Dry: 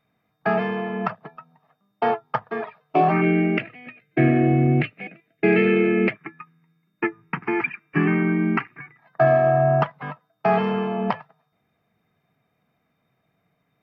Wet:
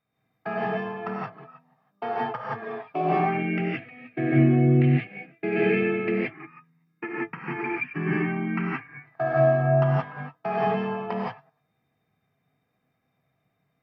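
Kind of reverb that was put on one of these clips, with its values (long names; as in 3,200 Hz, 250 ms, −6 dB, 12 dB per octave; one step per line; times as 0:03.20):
reverb whose tail is shaped and stops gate 200 ms rising, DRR −5.5 dB
level −10.5 dB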